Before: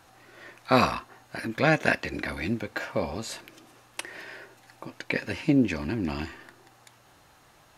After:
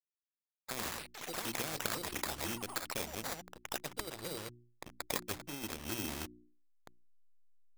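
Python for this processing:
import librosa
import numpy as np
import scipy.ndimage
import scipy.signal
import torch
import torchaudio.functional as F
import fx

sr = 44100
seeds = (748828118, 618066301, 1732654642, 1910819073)

y = fx.bin_expand(x, sr, power=1.5)
y = fx.transient(y, sr, attack_db=0, sustain_db=-7)
y = fx.over_compress(y, sr, threshold_db=-31.0, ratio=-1.0)
y = fx.dynamic_eq(y, sr, hz=320.0, q=1.4, threshold_db=-47.0, ratio=4.0, max_db=7)
y = fx.backlash(y, sr, play_db=-35.5)
y = fx.sample_hold(y, sr, seeds[0], rate_hz=2900.0, jitter_pct=0)
y = fx.echo_pitch(y, sr, ms=313, semitones=7, count=3, db_per_echo=-6.0)
y = fx.hum_notches(y, sr, base_hz=60, count=6)
y = fx.spectral_comp(y, sr, ratio=2.0)
y = y * librosa.db_to_amplitude(-4.0)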